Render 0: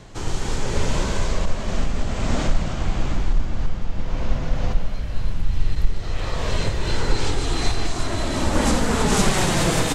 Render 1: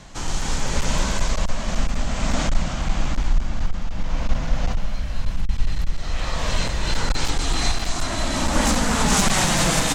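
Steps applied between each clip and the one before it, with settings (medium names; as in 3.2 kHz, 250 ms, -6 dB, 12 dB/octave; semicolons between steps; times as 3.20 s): fifteen-band graphic EQ 100 Hz -9 dB, 400 Hz -10 dB, 6.3 kHz +3 dB; one-sided clip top -15.5 dBFS; trim +2.5 dB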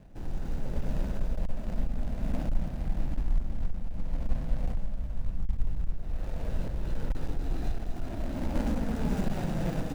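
median filter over 41 samples; trim -7.5 dB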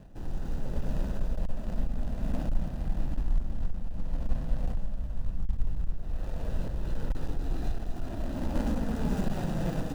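band-stop 2.2 kHz, Q 7.4; reverse; upward compressor, threshold -35 dBFS; reverse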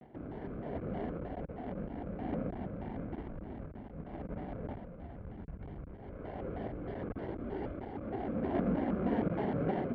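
cabinet simulation 120–2300 Hz, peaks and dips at 150 Hz -7 dB, 360 Hz +7 dB, 630 Hz +4 dB, 1 kHz -6 dB; vibrato with a chosen wave square 3.2 Hz, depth 250 cents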